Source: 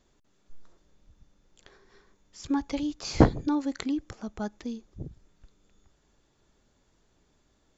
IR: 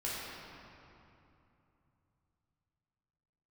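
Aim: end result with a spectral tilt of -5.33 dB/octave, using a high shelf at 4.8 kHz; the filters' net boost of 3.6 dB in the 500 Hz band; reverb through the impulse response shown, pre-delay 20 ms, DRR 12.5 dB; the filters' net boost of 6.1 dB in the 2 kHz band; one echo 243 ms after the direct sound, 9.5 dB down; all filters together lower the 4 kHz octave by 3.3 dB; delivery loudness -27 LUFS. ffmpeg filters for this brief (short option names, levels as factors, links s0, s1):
-filter_complex "[0:a]equalizer=f=500:t=o:g=4,equalizer=f=2000:t=o:g=9,equalizer=f=4000:t=o:g=-3.5,highshelf=f=4800:g=-5.5,aecho=1:1:243:0.335,asplit=2[s0][s1];[1:a]atrim=start_sample=2205,adelay=20[s2];[s1][s2]afir=irnorm=-1:irlink=0,volume=0.141[s3];[s0][s3]amix=inputs=2:normalize=0"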